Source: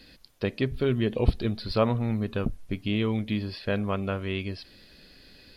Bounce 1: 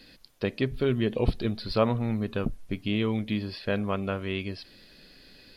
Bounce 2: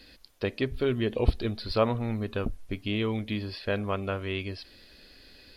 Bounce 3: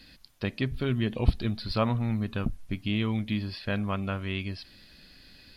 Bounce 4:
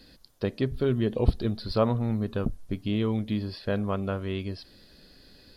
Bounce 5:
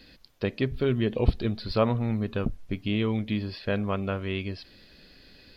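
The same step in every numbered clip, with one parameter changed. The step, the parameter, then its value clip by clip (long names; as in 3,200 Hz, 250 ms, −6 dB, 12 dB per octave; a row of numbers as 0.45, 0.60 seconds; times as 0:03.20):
parametric band, centre frequency: 65, 160, 450, 2,400, 10,000 Hertz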